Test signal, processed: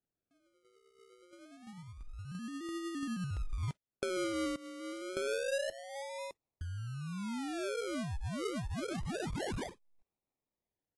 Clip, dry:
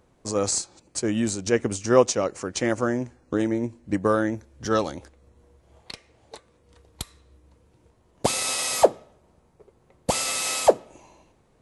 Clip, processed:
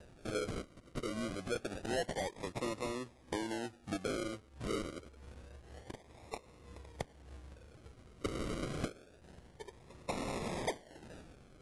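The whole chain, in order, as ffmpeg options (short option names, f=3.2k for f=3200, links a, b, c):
-filter_complex "[0:a]acrossover=split=280|3000[a][b][c];[a]acompressor=threshold=-53dB:ratio=1.5[d];[d][b][c]amix=inputs=3:normalize=0,aeval=exprs='0.708*(cos(1*acos(clip(val(0)/0.708,-1,1)))-cos(1*PI/2))+0.0178*(cos(2*acos(clip(val(0)/0.708,-1,1)))-cos(2*PI/2))+0.0141*(cos(3*acos(clip(val(0)/0.708,-1,1)))-cos(3*PI/2))+0.0282*(cos(5*acos(clip(val(0)/0.708,-1,1)))-cos(5*PI/2))+0.00501*(cos(6*acos(clip(val(0)/0.708,-1,1)))-cos(6*PI/2))':c=same,aresample=16000,asoftclip=type=tanh:threshold=-16.5dB,aresample=44100,aphaser=in_gain=1:out_gain=1:delay=2.6:decay=0.25:speed=1.5:type=triangular,acompressor=threshold=-44dB:ratio=2.5,acrusher=samples=40:mix=1:aa=0.000001:lfo=1:lforange=24:lforate=0.27,volume=1.5dB" -ar 24000 -c:a aac -b:a 48k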